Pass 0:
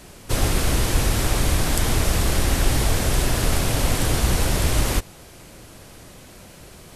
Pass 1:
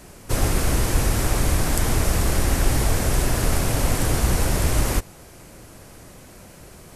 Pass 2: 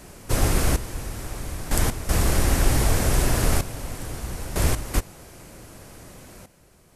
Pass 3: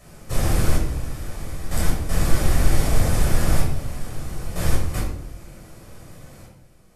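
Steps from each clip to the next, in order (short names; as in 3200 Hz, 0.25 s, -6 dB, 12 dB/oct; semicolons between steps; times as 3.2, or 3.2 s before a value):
bell 3500 Hz -5.5 dB 0.94 oct
step gate "xxxx.....x.xxxx" 79 bpm -12 dB
shoebox room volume 1000 m³, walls furnished, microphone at 6.1 m; gain -9 dB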